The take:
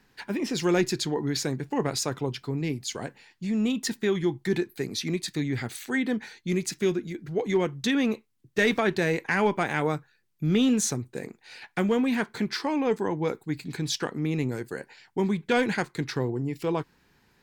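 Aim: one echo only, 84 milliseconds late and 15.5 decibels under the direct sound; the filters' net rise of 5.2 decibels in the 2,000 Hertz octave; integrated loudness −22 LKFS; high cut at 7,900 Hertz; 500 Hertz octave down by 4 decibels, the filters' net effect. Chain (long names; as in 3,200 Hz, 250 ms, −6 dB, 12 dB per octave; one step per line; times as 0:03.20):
low-pass filter 7,900 Hz
parametric band 500 Hz −5.5 dB
parametric band 2,000 Hz +6.5 dB
single-tap delay 84 ms −15.5 dB
level +5.5 dB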